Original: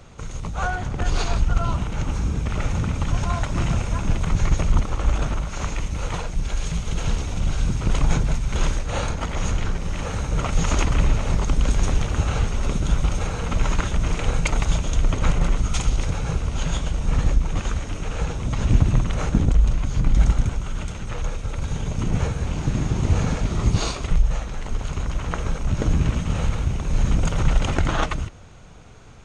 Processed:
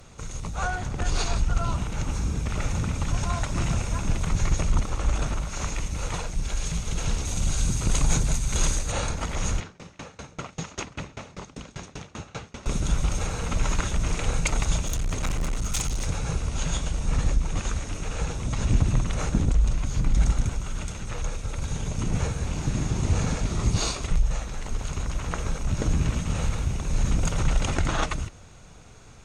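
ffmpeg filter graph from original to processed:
ffmpeg -i in.wav -filter_complex "[0:a]asettb=1/sr,asplit=3[link_01][link_02][link_03];[link_01]atrim=end=7.254[link_04];[link_02]atrim=start=7.25:end=8.92,asetpts=PTS-STARTPTS,afade=type=in:duration=0.004:curve=qsin,afade=type=out:start_time=1.666:duration=0.004:curve=qsin,bass=frequency=250:gain=1,treble=frequency=4000:gain=8,bandreject=frequency=5400:width=13[link_05];[link_03]atrim=start=8.916[link_06];[link_04][link_05]acrossfade=duration=0.004:curve1=hsin:curve2=qsin[link_07];[link_07][link_06]acrossfade=duration=0.004:curve1=qsin:curve2=hsin,asettb=1/sr,asplit=3[link_08][link_09][link_10];[link_08]atrim=end=9.604[link_11];[link_09]atrim=start=9.6:end=12.66,asetpts=PTS-STARTPTS,afade=type=in:duration=0.004:curve=qsin,afade=type=out:start_time=3.056:duration=0.004:curve=qsin,highpass=130,lowpass=5500,aeval=exprs='val(0)*pow(10,-26*if(lt(mod(5.1*n/s,1),2*abs(5.1)/1000),1-mod(5.1*n/s,1)/(2*abs(5.1)/1000),(mod(5.1*n/s,1)-2*abs(5.1)/1000)/(1-2*abs(5.1)/1000))/20)':channel_layout=same[link_12];[link_10]atrim=start=12.656[link_13];[link_11][link_12]acrossfade=duration=0.004:curve1=hsin:curve2=qsin[link_14];[link_14][link_13]acrossfade=duration=0.004:curve1=qsin:curve2=hsin,asettb=1/sr,asplit=3[link_15][link_16][link_17];[link_15]atrim=end=14.854[link_18];[link_16]atrim=start=14.85:end=16.07,asetpts=PTS-STARTPTS,afade=type=in:duration=0.004:curve=qsin,afade=type=out:start_time=1.216:duration=0.004:curve=qsin,lowpass=frequency=2600:poles=1,aemphasis=mode=production:type=75fm,asoftclip=type=hard:threshold=-19dB[link_19];[link_17]atrim=start=16.066[link_20];[link_18][link_19]acrossfade=duration=0.004:curve1=hsin:curve2=qsin[link_21];[link_21][link_20]acrossfade=duration=0.004:curve1=qsin:curve2=hsin,aemphasis=mode=production:type=cd,bandreject=frequency=3100:width=21,acontrast=23,volume=-8dB" out.wav

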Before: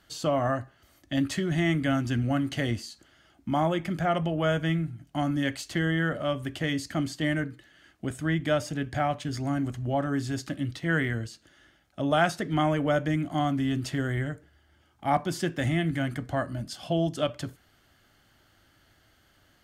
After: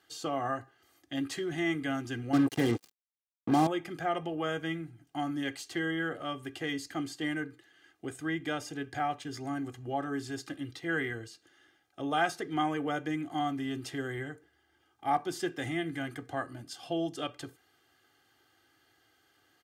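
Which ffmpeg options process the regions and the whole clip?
ffmpeg -i in.wav -filter_complex "[0:a]asettb=1/sr,asplit=3[link_01][link_02][link_03];[link_01]atrim=end=2.334[link_04];[link_02]atrim=start=2.33:end=3.67,asetpts=PTS-STARTPTS,afade=type=in:duration=0.004:curve=qsin,afade=type=out:start_time=1.336:duration=0.004:curve=qsin,acrusher=bits=4:mix=0:aa=0.5,equalizer=frequency=200:width_type=o:width=2.4:gain=12[link_05];[link_03]atrim=start=3.666[link_06];[link_04][link_05]acrossfade=duration=0.004:curve1=hsin:curve2=qsin[link_07];[link_07][link_06]acrossfade=duration=0.004:curve1=qsin:curve2=hsin,highpass=170,aecho=1:1:2.5:0.68,volume=-6dB" out.wav

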